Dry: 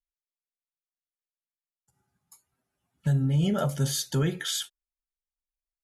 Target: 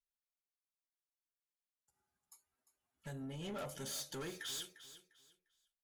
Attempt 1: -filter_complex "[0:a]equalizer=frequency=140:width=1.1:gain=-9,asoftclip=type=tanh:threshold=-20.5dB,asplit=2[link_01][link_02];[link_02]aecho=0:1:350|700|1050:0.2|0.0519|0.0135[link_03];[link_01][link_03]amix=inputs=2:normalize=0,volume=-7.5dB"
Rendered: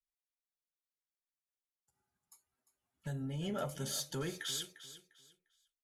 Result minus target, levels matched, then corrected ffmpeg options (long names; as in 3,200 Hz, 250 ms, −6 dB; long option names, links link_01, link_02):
soft clipping: distortion −14 dB; 125 Hz band +3.5 dB
-filter_complex "[0:a]equalizer=frequency=140:width=1.1:gain=-15.5,asoftclip=type=tanh:threshold=-32dB,asplit=2[link_01][link_02];[link_02]aecho=0:1:350|700|1050:0.2|0.0519|0.0135[link_03];[link_01][link_03]amix=inputs=2:normalize=0,volume=-7.5dB"